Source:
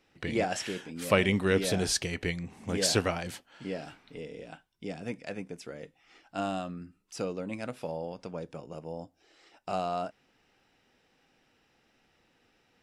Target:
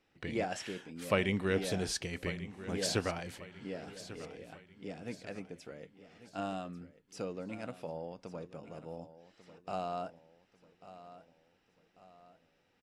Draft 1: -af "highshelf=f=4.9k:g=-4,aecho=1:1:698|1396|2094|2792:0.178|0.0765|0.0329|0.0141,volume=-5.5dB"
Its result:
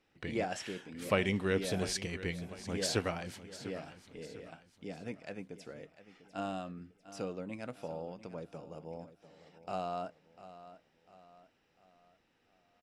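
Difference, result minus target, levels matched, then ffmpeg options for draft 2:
echo 0.445 s early
-af "highshelf=f=4.9k:g=-4,aecho=1:1:1143|2286|3429|4572:0.178|0.0765|0.0329|0.0141,volume=-5.5dB"

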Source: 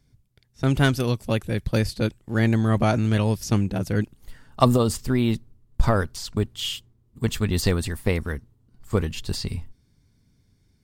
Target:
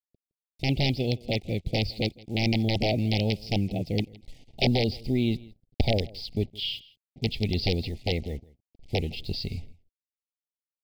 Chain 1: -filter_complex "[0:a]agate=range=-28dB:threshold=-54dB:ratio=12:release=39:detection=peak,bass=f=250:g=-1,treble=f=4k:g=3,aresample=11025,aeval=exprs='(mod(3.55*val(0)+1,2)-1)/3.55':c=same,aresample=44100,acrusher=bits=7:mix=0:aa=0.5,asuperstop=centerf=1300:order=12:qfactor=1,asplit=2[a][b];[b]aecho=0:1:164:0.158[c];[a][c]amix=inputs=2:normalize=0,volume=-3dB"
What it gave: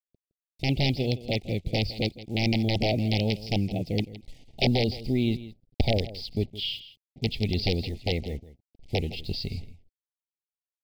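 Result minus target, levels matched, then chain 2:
echo-to-direct +6.5 dB
-filter_complex "[0:a]agate=range=-28dB:threshold=-54dB:ratio=12:release=39:detection=peak,bass=f=250:g=-1,treble=f=4k:g=3,aresample=11025,aeval=exprs='(mod(3.55*val(0)+1,2)-1)/3.55':c=same,aresample=44100,acrusher=bits=7:mix=0:aa=0.5,asuperstop=centerf=1300:order=12:qfactor=1,asplit=2[a][b];[b]aecho=0:1:164:0.075[c];[a][c]amix=inputs=2:normalize=0,volume=-3dB"

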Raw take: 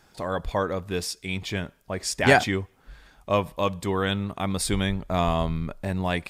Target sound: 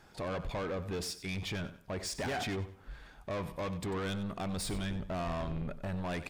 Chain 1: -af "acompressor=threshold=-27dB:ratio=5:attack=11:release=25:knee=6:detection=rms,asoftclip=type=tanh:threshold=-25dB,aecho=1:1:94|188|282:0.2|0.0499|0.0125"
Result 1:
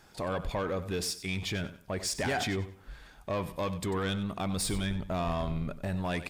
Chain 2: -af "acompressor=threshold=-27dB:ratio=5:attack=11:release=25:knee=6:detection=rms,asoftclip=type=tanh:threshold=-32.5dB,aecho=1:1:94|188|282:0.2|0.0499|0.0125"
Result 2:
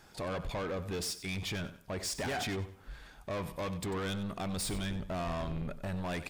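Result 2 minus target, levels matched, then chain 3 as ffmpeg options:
8000 Hz band +2.5 dB
-af "acompressor=threshold=-27dB:ratio=5:attack=11:release=25:knee=6:detection=rms,highshelf=f=4k:g=-7,asoftclip=type=tanh:threshold=-32.5dB,aecho=1:1:94|188|282:0.2|0.0499|0.0125"

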